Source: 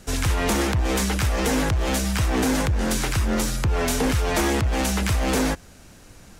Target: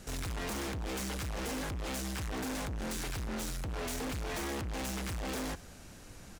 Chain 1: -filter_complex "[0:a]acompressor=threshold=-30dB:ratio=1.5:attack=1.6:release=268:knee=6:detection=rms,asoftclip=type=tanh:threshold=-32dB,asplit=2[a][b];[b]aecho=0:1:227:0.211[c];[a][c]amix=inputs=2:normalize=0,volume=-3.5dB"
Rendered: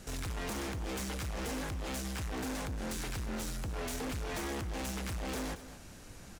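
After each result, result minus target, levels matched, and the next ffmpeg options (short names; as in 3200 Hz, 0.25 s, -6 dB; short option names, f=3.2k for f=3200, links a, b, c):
echo-to-direct +12 dB; compressor: peak gain reduction +5 dB
-filter_complex "[0:a]acompressor=threshold=-30dB:ratio=1.5:attack=1.6:release=268:knee=6:detection=rms,asoftclip=type=tanh:threshold=-32dB,asplit=2[a][b];[b]aecho=0:1:227:0.0531[c];[a][c]amix=inputs=2:normalize=0,volume=-3.5dB"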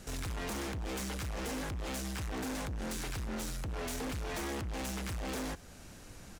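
compressor: peak gain reduction +5 dB
-filter_complex "[0:a]asoftclip=type=tanh:threshold=-32dB,asplit=2[a][b];[b]aecho=0:1:227:0.0531[c];[a][c]amix=inputs=2:normalize=0,volume=-3.5dB"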